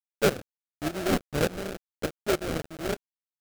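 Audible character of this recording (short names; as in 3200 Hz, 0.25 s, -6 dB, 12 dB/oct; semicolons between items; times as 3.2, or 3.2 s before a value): a quantiser's noise floor 6-bit, dither none; tremolo saw up 3.4 Hz, depth 80%; aliases and images of a low sample rate 1000 Hz, jitter 20%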